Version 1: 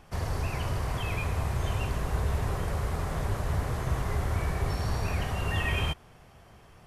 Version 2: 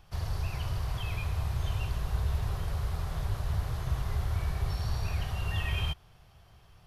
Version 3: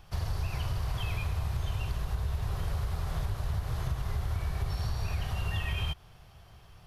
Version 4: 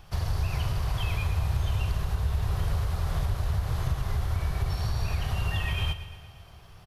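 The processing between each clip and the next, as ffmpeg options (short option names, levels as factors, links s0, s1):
-af "equalizer=f=250:t=o:w=1:g=-12,equalizer=f=500:t=o:w=1:g=-7,equalizer=f=1000:t=o:w=1:g=-4,equalizer=f=2000:t=o:w=1:g=-7,equalizer=f=4000:t=o:w=1:g=3,equalizer=f=8000:t=o:w=1:g=-8"
-af "acompressor=threshold=0.0282:ratio=6,volume=1.5"
-af "aecho=1:1:117|234|351|468|585|702|819:0.224|0.134|0.0806|0.0484|0.029|0.0174|0.0104,volume=1.5"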